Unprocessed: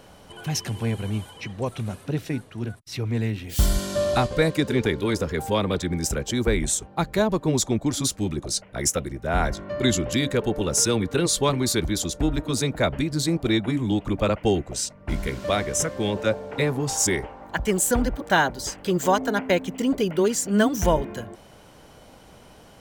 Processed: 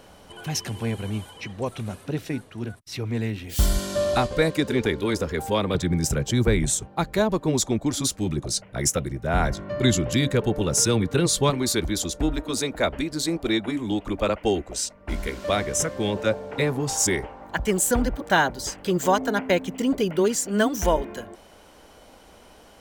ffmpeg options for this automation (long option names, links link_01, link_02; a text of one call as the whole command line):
ffmpeg -i in.wav -af "asetnsamples=nb_out_samples=441:pad=0,asendcmd='5.75 equalizer g 8.5;6.88 equalizer g -2;8.27 equalizer g 5;11.5 equalizer g -5;12.33 equalizer g -12.5;15.48 equalizer g -1;20.36 equalizer g -12.5',equalizer=frequency=130:width_type=o:width=0.87:gain=-3.5" out.wav